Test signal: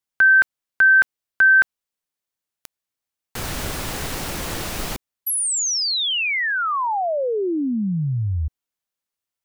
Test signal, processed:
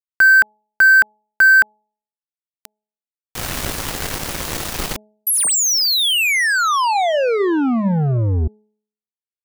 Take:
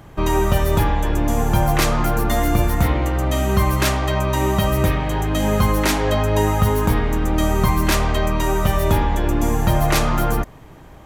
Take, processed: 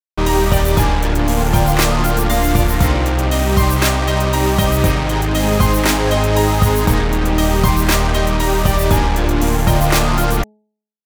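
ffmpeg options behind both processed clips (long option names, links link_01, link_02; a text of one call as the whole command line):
ffmpeg -i in.wav -af "acrusher=bits=3:mix=0:aa=0.5,bandreject=frequency=212.5:width_type=h:width=4,bandreject=frequency=425:width_type=h:width=4,bandreject=frequency=637.5:width_type=h:width=4,bandreject=frequency=850:width_type=h:width=4,volume=3.5dB" out.wav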